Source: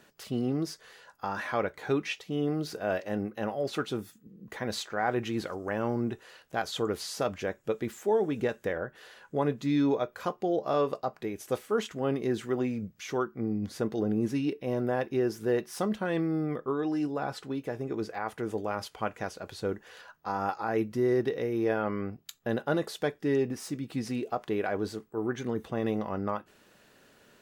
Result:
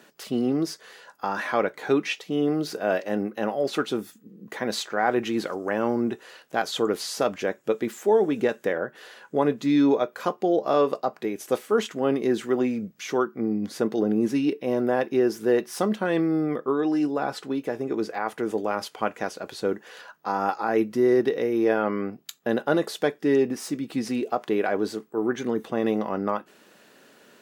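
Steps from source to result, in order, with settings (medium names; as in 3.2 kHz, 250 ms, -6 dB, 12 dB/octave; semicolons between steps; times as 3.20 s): Chebyshev high-pass 230 Hz, order 2; trim +6.5 dB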